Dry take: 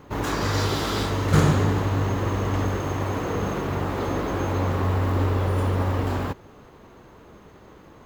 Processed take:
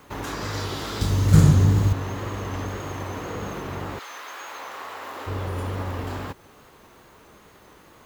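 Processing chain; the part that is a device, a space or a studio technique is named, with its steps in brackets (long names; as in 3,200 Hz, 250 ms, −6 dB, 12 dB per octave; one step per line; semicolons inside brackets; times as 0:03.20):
0:01.01–0:01.93: bass and treble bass +13 dB, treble +10 dB
0:03.98–0:05.26: high-pass filter 1,400 Hz → 540 Hz 12 dB per octave
noise-reduction cassette on a plain deck (one half of a high-frequency compander encoder only; tape wow and flutter; white noise bed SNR 39 dB)
level −6.5 dB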